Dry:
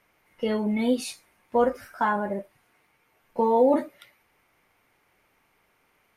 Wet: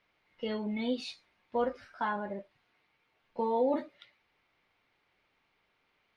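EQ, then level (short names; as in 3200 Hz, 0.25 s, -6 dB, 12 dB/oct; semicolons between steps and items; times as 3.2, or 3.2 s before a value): synth low-pass 4000 Hz, resonance Q 2.2; -9.0 dB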